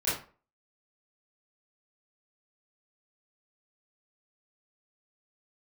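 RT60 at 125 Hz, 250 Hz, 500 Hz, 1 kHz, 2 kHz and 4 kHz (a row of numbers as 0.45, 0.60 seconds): 0.35, 0.40, 0.40, 0.40, 0.35, 0.25 seconds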